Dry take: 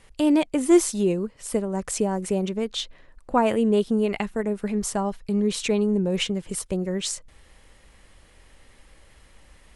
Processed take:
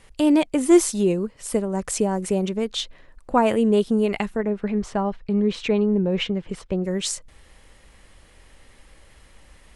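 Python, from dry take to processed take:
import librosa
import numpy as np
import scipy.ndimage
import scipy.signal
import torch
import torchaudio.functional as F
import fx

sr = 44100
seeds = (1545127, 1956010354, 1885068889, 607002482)

y = fx.lowpass(x, sr, hz=3200.0, slope=12, at=(4.36, 6.84))
y = y * librosa.db_to_amplitude(2.0)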